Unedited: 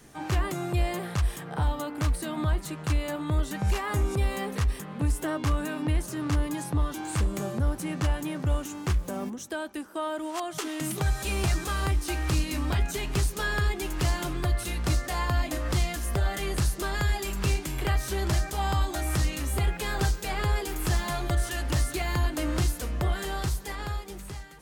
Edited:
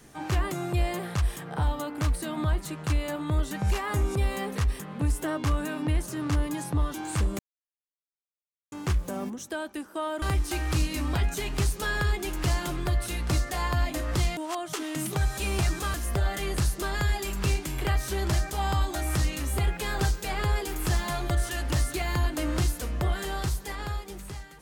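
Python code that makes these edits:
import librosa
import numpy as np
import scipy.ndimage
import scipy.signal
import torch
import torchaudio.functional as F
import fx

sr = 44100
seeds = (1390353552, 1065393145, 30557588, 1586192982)

y = fx.edit(x, sr, fx.silence(start_s=7.39, length_s=1.33),
    fx.move(start_s=10.22, length_s=1.57, to_s=15.94), tone=tone)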